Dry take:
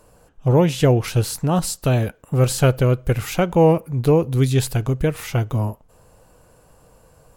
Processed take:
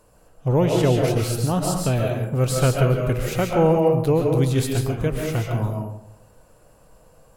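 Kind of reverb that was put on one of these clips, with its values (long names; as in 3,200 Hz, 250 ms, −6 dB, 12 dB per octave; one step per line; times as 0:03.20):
comb and all-pass reverb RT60 0.76 s, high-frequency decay 0.45×, pre-delay 95 ms, DRR 0.5 dB
level −4 dB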